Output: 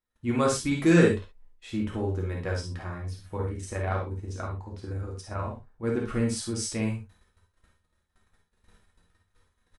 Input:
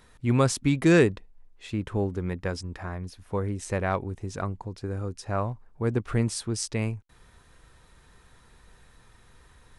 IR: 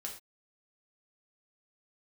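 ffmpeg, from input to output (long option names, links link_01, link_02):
-filter_complex "[0:a]agate=range=-31dB:threshold=-51dB:ratio=16:detection=peak,asettb=1/sr,asplit=3[link_01][link_02][link_03];[link_01]atrim=end=3.364[link_04];[link_02]atrim=start=3.36:end=5.84,asetpts=PTS-STARTPTS,afade=type=in:duration=0.004:curve=qsin,afade=type=out:start_time=2.476:duration=0.004:curve=qsin,tremolo=f=25:d=0.667[link_05];[link_03]atrim=start=5.836[link_06];[link_04][link_05]acrossfade=duration=0.004:curve1=hsin:curve2=qsin[link_07];[link_07][link_06]acrossfade=duration=0.004:curve1=qsin:curve2=hsin,aecho=1:1:52|65:0.447|0.316[link_08];[1:a]atrim=start_sample=2205,atrim=end_sample=3528[link_09];[link_08][link_09]afir=irnorm=-1:irlink=0"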